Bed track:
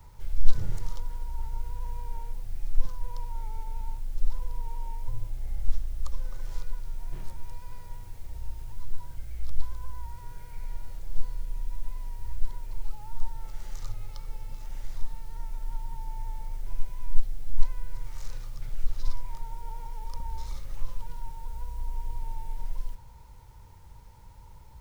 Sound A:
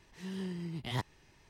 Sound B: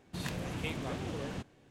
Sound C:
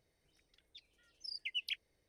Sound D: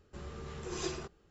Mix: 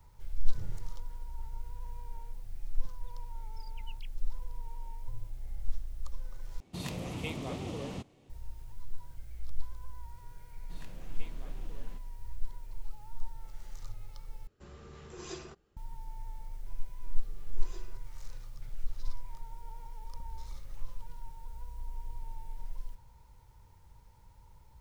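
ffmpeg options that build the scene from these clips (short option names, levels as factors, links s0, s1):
-filter_complex "[2:a]asplit=2[s0][s1];[4:a]asplit=2[s2][s3];[0:a]volume=0.422[s4];[s0]equalizer=f=1600:w=4.2:g=-12.5[s5];[s4]asplit=3[s6][s7][s8];[s6]atrim=end=6.604[s9];[s5]atrim=end=1.7[s10];[s7]atrim=start=8.296:end=14.474[s11];[s2]atrim=end=1.3,asetpts=PTS-STARTPTS,volume=0.501[s12];[s8]atrim=start=15.766[s13];[3:a]atrim=end=2.08,asetpts=PTS-STARTPTS,volume=0.158,afade=t=in:d=0.004:c=hsin,afade=t=out:st=2.076:d=0.004:c=hsin,adelay=2320[s14];[s1]atrim=end=1.7,asetpts=PTS-STARTPTS,volume=0.178,afade=t=in:d=0.004:c=hsin,afade=t=out:st=1.696:d=0.004:c=hsin,adelay=10560[s15];[s3]atrim=end=1.3,asetpts=PTS-STARTPTS,volume=0.15,afade=t=in:d=0.004:c=hsin,afade=t=out:st=1.296:d=0.004:c=hsin,adelay=16900[s16];[s9][s10]acrossfade=d=0.004:c1=hsin:c2=hsin[s17];[s17][s11]acrossfade=d=0.004:c1=hsin:c2=hsin[s18];[s18][s12]acrossfade=d=0.004:c1=hsin:c2=hsin[s19];[s19][s13]acrossfade=d=0.004:c1=hsin:c2=hsin[s20];[s20][s14][s15][s16]amix=inputs=4:normalize=0"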